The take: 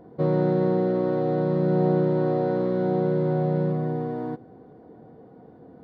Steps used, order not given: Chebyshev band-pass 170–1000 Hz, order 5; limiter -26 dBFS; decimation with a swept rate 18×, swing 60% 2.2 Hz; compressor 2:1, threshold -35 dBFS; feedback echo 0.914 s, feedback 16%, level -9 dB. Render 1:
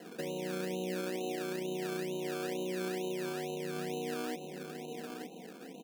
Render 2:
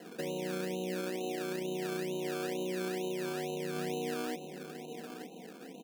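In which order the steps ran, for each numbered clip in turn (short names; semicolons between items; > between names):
limiter > feedback echo > compressor > Chebyshev band-pass > decimation with a swept rate; limiter > Chebyshev band-pass > compressor > feedback echo > decimation with a swept rate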